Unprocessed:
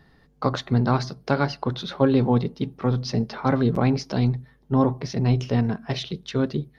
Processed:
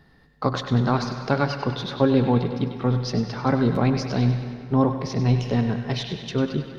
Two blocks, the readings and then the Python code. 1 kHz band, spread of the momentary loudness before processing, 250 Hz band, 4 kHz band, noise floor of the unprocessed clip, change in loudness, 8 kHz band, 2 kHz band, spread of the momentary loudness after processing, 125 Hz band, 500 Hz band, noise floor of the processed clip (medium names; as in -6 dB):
+0.5 dB, 8 LU, +0.5 dB, +1.0 dB, -58 dBFS, +0.5 dB, no reading, +1.0 dB, 7 LU, +0.5 dB, +0.5 dB, -55 dBFS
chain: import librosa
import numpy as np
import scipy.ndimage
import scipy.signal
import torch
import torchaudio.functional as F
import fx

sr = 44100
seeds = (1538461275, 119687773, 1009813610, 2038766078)

p1 = x + fx.echo_banded(x, sr, ms=98, feedback_pct=70, hz=2400.0, wet_db=-7.5, dry=0)
y = fx.rev_plate(p1, sr, seeds[0], rt60_s=2.5, hf_ratio=0.6, predelay_ms=90, drr_db=10.5)